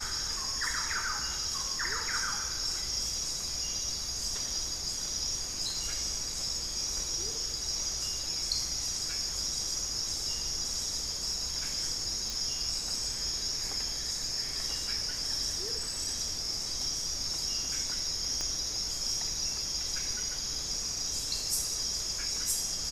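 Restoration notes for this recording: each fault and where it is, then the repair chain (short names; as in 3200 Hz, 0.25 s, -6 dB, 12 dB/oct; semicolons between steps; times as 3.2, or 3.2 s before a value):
12.3 pop
18.41 pop -20 dBFS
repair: de-click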